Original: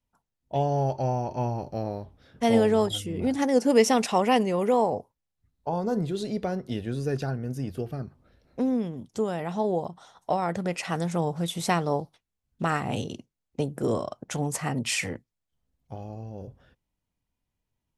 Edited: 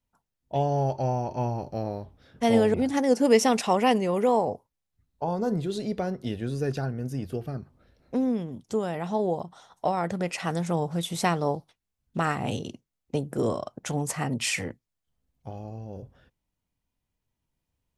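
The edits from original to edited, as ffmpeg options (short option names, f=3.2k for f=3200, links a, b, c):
-filter_complex "[0:a]asplit=2[a][b];[a]atrim=end=2.742[c];[b]atrim=start=3.188[d];[c][d]acrossfade=d=0.004:c1=hsin:c2=hsin"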